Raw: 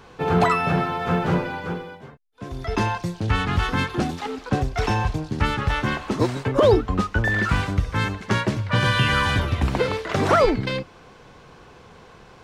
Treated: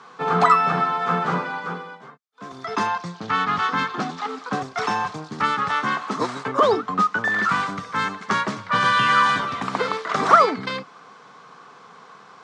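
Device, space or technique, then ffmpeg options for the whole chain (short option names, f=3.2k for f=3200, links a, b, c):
television speaker: -filter_complex "[0:a]highpass=f=190:w=0.5412,highpass=f=190:w=1.3066,equalizer=f=230:t=q:w=4:g=-4,equalizer=f=340:t=q:w=4:g=-10,equalizer=f=550:t=q:w=4:g=-6,equalizer=f=1.2k:t=q:w=4:g=10,equalizer=f=2.7k:t=q:w=4:g=-5,lowpass=f=8.4k:w=0.5412,lowpass=f=8.4k:w=1.3066,asettb=1/sr,asplit=3[a][b][c];[a]atrim=end=2.874[d];[b]atrim=start=2.87:end=4.29,asetpts=PTS-STARTPTS,afade=t=in:d=0.004:c=qsin,afade=t=out:st=1.416:d=0.004:c=qsin,lowpass=6.3k[e];[c]atrim=start=4.286[f];[d][e]acrossfade=d=0.004:c1=hsin:c2=qsin[g];[g][f]acrossfade=d=0.004:c1=qsin:c2=hsin,volume=1dB"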